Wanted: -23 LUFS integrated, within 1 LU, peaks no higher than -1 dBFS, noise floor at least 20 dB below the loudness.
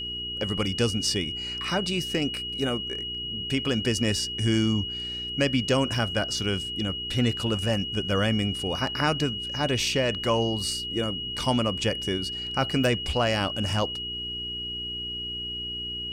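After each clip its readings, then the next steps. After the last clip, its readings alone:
hum 60 Hz; harmonics up to 420 Hz; hum level -42 dBFS; steady tone 2900 Hz; tone level -31 dBFS; loudness -26.5 LUFS; peak -11.0 dBFS; loudness target -23.0 LUFS
-> de-hum 60 Hz, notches 7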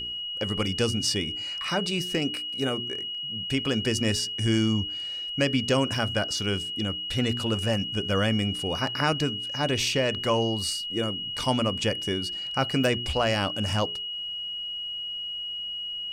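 hum none; steady tone 2900 Hz; tone level -31 dBFS
-> notch 2900 Hz, Q 30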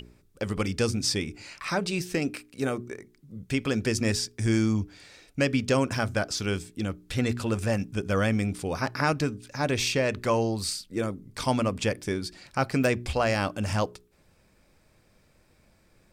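steady tone none; loudness -28.0 LUFS; peak -11.5 dBFS; loudness target -23.0 LUFS
-> gain +5 dB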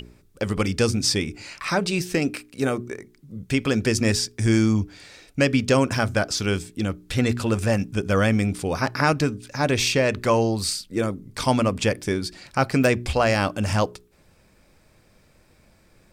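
loudness -23.0 LUFS; peak -6.5 dBFS; noise floor -58 dBFS

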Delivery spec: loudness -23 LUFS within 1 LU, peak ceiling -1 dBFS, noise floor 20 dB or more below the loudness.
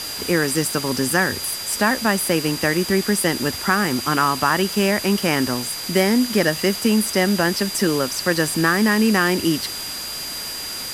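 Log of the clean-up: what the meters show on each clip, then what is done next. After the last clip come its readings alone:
steady tone 4800 Hz; tone level -30 dBFS; noise floor -30 dBFS; noise floor target -40 dBFS; loudness -19.5 LUFS; peak -3.0 dBFS; loudness target -23.0 LUFS
-> notch 4800 Hz, Q 30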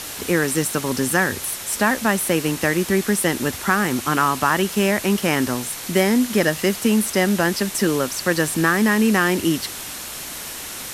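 steady tone none; noise floor -33 dBFS; noise floor target -40 dBFS
-> denoiser 7 dB, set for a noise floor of -33 dBFS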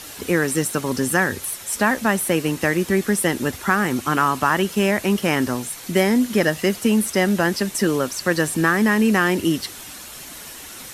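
noise floor -38 dBFS; noise floor target -40 dBFS
-> denoiser 6 dB, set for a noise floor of -38 dBFS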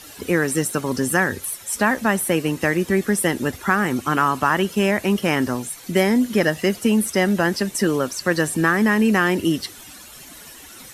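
noise floor -42 dBFS; loudness -20.0 LUFS; peak -3.5 dBFS; loudness target -23.0 LUFS
-> gain -3 dB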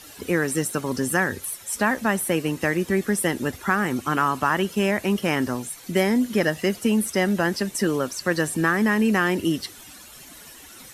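loudness -23.0 LUFS; peak -6.5 dBFS; noise floor -45 dBFS

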